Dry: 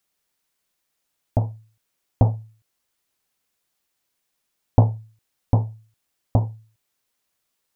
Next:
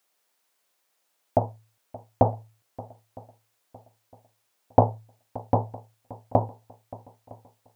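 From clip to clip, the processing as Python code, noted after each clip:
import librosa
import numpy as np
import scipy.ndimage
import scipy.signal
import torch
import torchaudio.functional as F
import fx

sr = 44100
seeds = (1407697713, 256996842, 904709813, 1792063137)

y = fx.highpass(x, sr, hz=390.0, slope=6)
y = fx.peak_eq(y, sr, hz=650.0, db=6.0, octaves=1.9)
y = fx.echo_swing(y, sr, ms=959, ratio=1.5, feedback_pct=33, wet_db=-19.5)
y = y * librosa.db_to_amplitude(2.5)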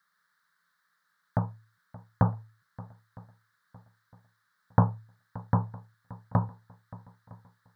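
y = fx.curve_eq(x, sr, hz=(110.0, 170.0, 310.0, 440.0, 710.0, 1200.0, 1700.0, 2600.0, 3900.0, 6600.0), db=(0, 11, -18, -10, -16, 9, 13, -17, 0, -10))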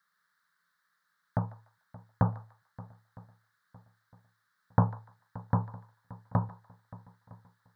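y = fx.echo_thinned(x, sr, ms=147, feedback_pct=37, hz=1200.0, wet_db=-14.5)
y = y * librosa.db_to_amplitude(-2.5)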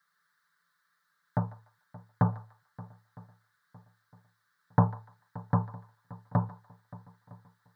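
y = scipy.signal.sosfilt(scipy.signal.butter(2, 82.0, 'highpass', fs=sr, output='sos'), x)
y = y + 0.65 * np.pad(y, (int(6.8 * sr / 1000.0), 0))[:len(y)]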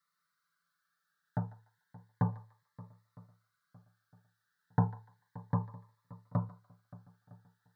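y = fx.notch_cascade(x, sr, direction='rising', hz=0.32)
y = y * librosa.db_to_amplitude(-5.0)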